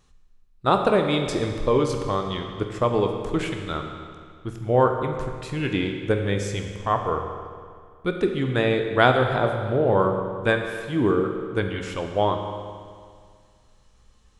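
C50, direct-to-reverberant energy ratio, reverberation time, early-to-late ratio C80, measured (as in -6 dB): 5.5 dB, 4.0 dB, 2.0 s, 6.5 dB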